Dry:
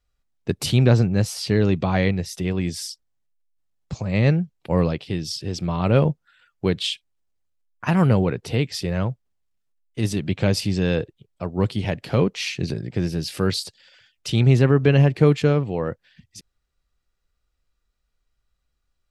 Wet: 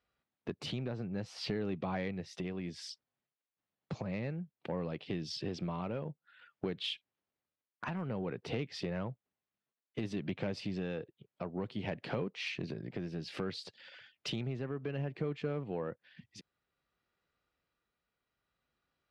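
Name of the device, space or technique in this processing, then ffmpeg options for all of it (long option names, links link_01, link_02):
AM radio: -af "highpass=160,lowpass=3200,acompressor=threshold=-35dB:ratio=5,asoftclip=type=tanh:threshold=-25dB,tremolo=f=0.58:d=0.31,volume=1.5dB"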